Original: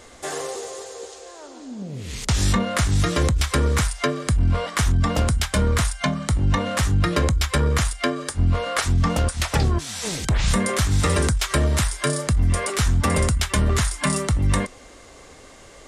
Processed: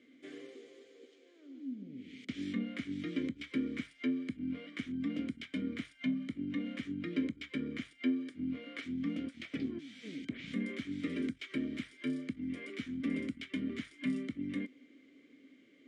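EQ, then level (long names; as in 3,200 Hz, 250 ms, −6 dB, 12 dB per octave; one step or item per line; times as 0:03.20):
formant filter i
high-pass filter 160 Hz 12 dB per octave
high-shelf EQ 2,100 Hz −10.5 dB
0.0 dB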